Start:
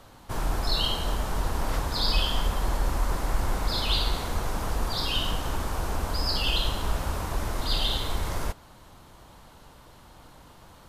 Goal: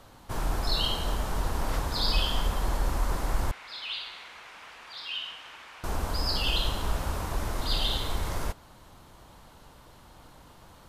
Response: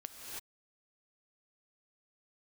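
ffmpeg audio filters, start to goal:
-filter_complex "[0:a]asettb=1/sr,asplit=3[a][b][c];[a]atrim=end=3.514[d];[b]atrim=start=3.51:end=5.84,asetpts=PTS-STARTPTS,afade=t=in:d=0.004:c=qsin,afade=t=out:st=2.326:d=0.004:c=qsin,bandpass=f=2.4k:t=q:w=2.1:csg=0[e];[c]atrim=start=5.836[f];[d][e]acrossfade=d=0.004:c1=hsin:c2=qsin[g];[g][f]acrossfade=d=0.004:c1=qsin:c2=hsin,volume=-1.5dB"

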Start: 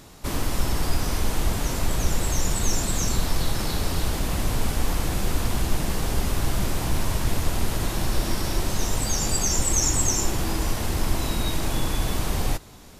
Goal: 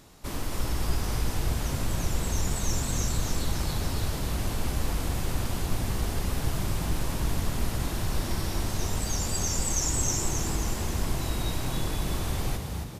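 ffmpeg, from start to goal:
-filter_complex "[0:a]asplit=7[a][b][c][d][e][f][g];[b]adelay=268,afreqshift=43,volume=-5.5dB[h];[c]adelay=536,afreqshift=86,volume=-11.3dB[i];[d]adelay=804,afreqshift=129,volume=-17.2dB[j];[e]adelay=1072,afreqshift=172,volume=-23dB[k];[f]adelay=1340,afreqshift=215,volume=-28.9dB[l];[g]adelay=1608,afreqshift=258,volume=-34.7dB[m];[a][h][i][j][k][l][m]amix=inputs=7:normalize=0,volume=-6.5dB"

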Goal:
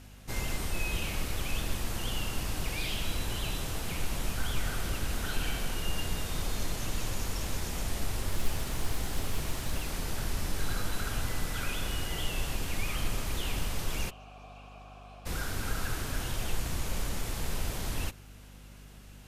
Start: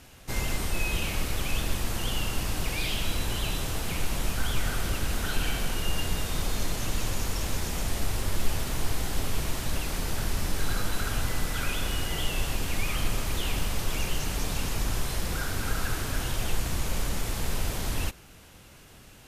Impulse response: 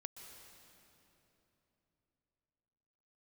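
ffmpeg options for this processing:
-filter_complex "[0:a]asettb=1/sr,asplit=3[a][b][c];[a]atrim=end=8.294[d];[b]atrim=start=8.29:end=9.9,asetpts=PTS-STARTPTS,afade=t=in:d=0.004:c=qsin,afade=t=out:st=1.606:d=0.004:c=qsin,acrusher=bits=8:mode=log:mix=0:aa=0.000001[e];[c]atrim=start=9.896[f];[d][e]acrossfade=d=0.004:c1=hsin:c2=qsin[g];[g][f]acrossfade=d=0.004:c1=qsin:c2=hsin,asplit=3[h][i][j];[h]afade=t=out:st=14.09:d=0.02[k];[i]asplit=3[l][m][n];[l]bandpass=f=730:t=q:w=8,volume=0dB[o];[m]bandpass=f=1.09k:t=q:w=8,volume=-6dB[p];[n]bandpass=f=2.44k:t=q:w=8,volume=-9dB[q];[o][p][q]amix=inputs=3:normalize=0,afade=t=in:st=14.09:d=0.02,afade=t=out:st=15.25:d=0.02[r];[j]afade=t=in:st=15.25:d=0.02[s];[k][r][s]amix=inputs=3:normalize=0,aeval=exprs='val(0)+0.00501*(sin(2*PI*50*n/s)+sin(2*PI*2*50*n/s)/2+sin(2*PI*3*50*n/s)/3+sin(2*PI*4*50*n/s)/4+sin(2*PI*5*50*n/s)/5)':c=same,volume=-4dB"

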